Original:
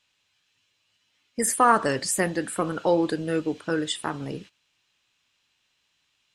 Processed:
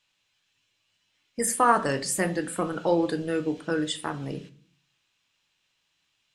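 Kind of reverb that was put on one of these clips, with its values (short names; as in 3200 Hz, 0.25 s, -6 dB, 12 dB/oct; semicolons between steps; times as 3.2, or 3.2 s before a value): shoebox room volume 290 m³, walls furnished, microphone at 0.68 m; gain -2.5 dB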